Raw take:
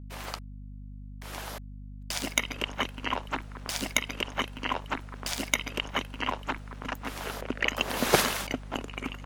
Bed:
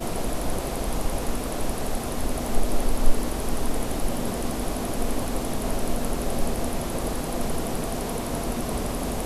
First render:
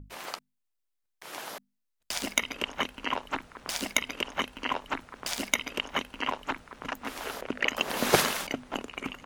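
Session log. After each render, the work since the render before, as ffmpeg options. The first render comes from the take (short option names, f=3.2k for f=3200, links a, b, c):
-af "bandreject=f=50:t=h:w=6,bandreject=f=100:t=h:w=6,bandreject=f=150:t=h:w=6,bandreject=f=200:t=h:w=6,bandreject=f=250:t=h:w=6"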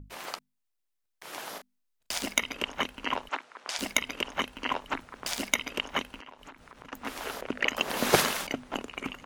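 -filter_complex "[0:a]asettb=1/sr,asplit=3[a][b][c];[a]atrim=end=1.514[d];[b]atrim=start=1.51:end=2.18,asetpts=PTS-STARTPTS,afade=t=in:d=0.004:c=qsin,afade=t=out:st=0.666:d=0.004:c=qsin,asplit=2[e][f];[f]adelay=37,volume=-6.5dB[g];[e][g]amix=inputs=2:normalize=0,atrim=end_sample=29547[h];[c]atrim=start=2.176[i];[d][h]acrossfade=d=0.004:c1=hsin:c2=qsin[j];[j][i]acrossfade=d=0.004:c1=qsin:c2=hsin,asettb=1/sr,asplit=3[k][l][m];[k]atrim=end=3.294[n];[l]atrim=start=3.29:end=3.79,asetpts=PTS-STARTPTS,afade=t=in:d=0.004:c=qsin,afade=t=out:st=0.496:d=0.004:c=qsin,highpass=480,lowpass=7.6k[o];[m]atrim=start=3.786[p];[n][o]acrossfade=d=0.004:c1=hsin:c2=qsin[q];[q][p]acrossfade=d=0.004:c1=qsin:c2=hsin,asettb=1/sr,asplit=3[r][s][t];[r]atrim=end=6.164[u];[s]atrim=start=6.16:end=6.93,asetpts=PTS-STARTPTS,afade=t=in:d=0.004:c=qsin,afade=t=out:st=0.766:d=0.004:c=qsin,acompressor=threshold=-44dB:ratio=8:attack=3.2:release=140:knee=1:detection=peak[v];[t]atrim=start=6.926[w];[u][v]acrossfade=d=0.004:c1=hsin:c2=qsin[x];[x][w]acrossfade=d=0.004:c1=qsin:c2=hsin"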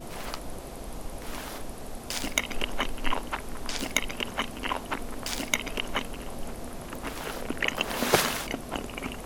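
-filter_complex "[1:a]volume=-11.5dB[a];[0:a][a]amix=inputs=2:normalize=0"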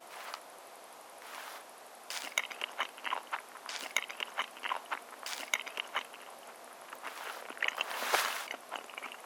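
-af "highpass=970,highshelf=f=2.1k:g=-9"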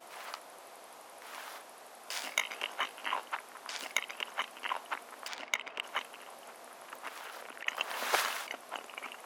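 -filter_complex "[0:a]asettb=1/sr,asplit=3[a][b][c];[a]atrim=end=2.054[d];[b]atrim=start=2.05:end=3.25,asetpts=PTS-STARTPTS,afade=t=in:d=0.004:c=qsin,afade=t=out:st=1.196:d=0.004:c=qsin,asplit=2[e][f];[f]adelay=19,volume=-4.5dB[g];[e][g]amix=inputs=2:normalize=0,atrim=end_sample=52920[h];[c]atrim=start=3.246[i];[d][h]acrossfade=d=0.004:c1=hsin:c2=qsin[j];[j][i]acrossfade=d=0.004:c1=qsin:c2=hsin,asplit=3[k][l][m];[k]afade=t=out:st=5.27:d=0.02[n];[l]adynamicsmooth=sensitivity=4.5:basefreq=3.2k,afade=t=in:st=5.27:d=0.02,afade=t=out:st=5.82:d=0.02[o];[m]afade=t=in:st=5.82:d=0.02[p];[n][o][p]amix=inputs=3:normalize=0,asplit=3[q][r][s];[q]afade=t=out:st=7.08:d=0.02[t];[r]acompressor=threshold=-40dB:ratio=10:attack=3.2:release=140:knee=1:detection=peak,afade=t=in:st=7.08:d=0.02,afade=t=out:st=7.66:d=0.02[u];[s]afade=t=in:st=7.66:d=0.02[v];[t][u][v]amix=inputs=3:normalize=0"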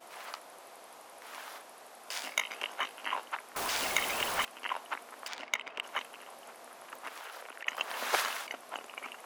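-filter_complex "[0:a]asettb=1/sr,asplit=3[a][b][c];[a]atrim=end=3.564[d];[b]atrim=start=3.56:end=4.45,asetpts=PTS-STARTPTS,afade=t=in:d=0.004:c=qsin,afade=t=out:st=0.886:d=0.004:c=qsin,aeval=exprs='val(0)+0.5*0.0316*sgn(val(0))':c=same[e];[c]atrim=start=4.446[f];[d][e]acrossfade=d=0.004:c1=hsin:c2=qsin[g];[g][f]acrossfade=d=0.004:c1=qsin:c2=hsin,asettb=1/sr,asplit=3[h][i][j];[h]atrim=end=7.204[k];[i]atrim=start=7.2:end=7.65,asetpts=PTS-STARTPTS,afade=t=in:d=0.004:c=qsin,afade=t=out:st=0.446:d=0.004:c=qsin,highpass=320[l];[j]atrim=start=7.646[m];[k][l]acrossfade=d=0.004:c1=hsin:c2=qsin[n];[n][m]acrossfade=d=0.004:c1=qsin:c2=hsin"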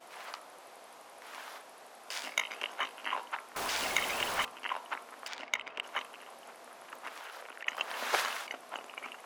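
-af "highshelf=f=9.6k:g=-6.5,bandreject=f=56.37:t=h:w=4,bandreject=f=112.74:t=h:w=4,bandreject=f=169.11:t=h:w=4,bandreject=f=225.48:t=h:w=4,bandreject=f=281.85:t=h:w=4,bandreject=f=338.22:t=h:w=4,bandreject=f=394.59:t=h:w=4,bandreject=f=450.96:t=h:w=4,bandreject=f=507.33:t=h:w=4,bandreject=f=563.7:t=h:w=4,bandreject=f=620.07:t=h:w=4,bandreject=f=676.44:t=h:w=4,bandreject=f=732.81:t=h:w=4,bandreject=f=789.18:t=h:w=4,bandreject=f=845.55:t=h:w=4,bandreject=f=901.92:t=h:w=4,bandreject=f=958.29:t=h:w=4,bandreject=f=1.01466k:t=h:w=4,bandreject=f=1.07103k:t=h:w=4,bandreject=f=1.1274k:t=h:w=4,bandreject=f=1.18377k:t=h:w=4,bandreject=f=1.24014k:t=h:w=4,bandreject=f=1.29651k:t=h:w=4,bandreject=f=1.35288k:t=h:w=4"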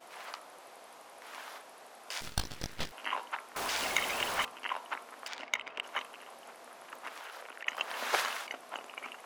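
-filter_complex "[0:a]asettb=1/sr,asplit=3[a][b][c];[a]atrim=end=2.214[d];[b]atrim=start=2.21:end=2.92,asetpts=PTS-STARTPTS,afade=t=in:d=0.004:c=qsin,afade=t=out:st=0.706:d=0.004:c=qsin,aeval=exprs='abs(val(0))':c=same[e];[c]atrim=start=2.916[f];[d][e]acrossfade=d=0.004:c1=hsin:c2=qsin[g];[g][f]acrossfade=d=0.004:c1=qsin:c2=hsin"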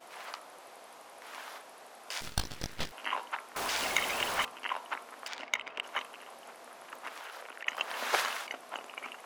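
-af "volume=1dB"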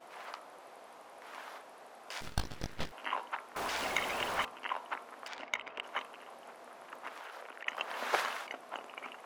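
-af "highshelf=f=2.6k:g=-8.5"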